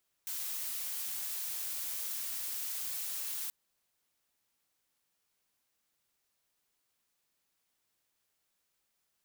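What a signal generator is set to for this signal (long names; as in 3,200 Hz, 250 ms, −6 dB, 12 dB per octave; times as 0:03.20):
noise blue, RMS −38 dBFS 3.23 s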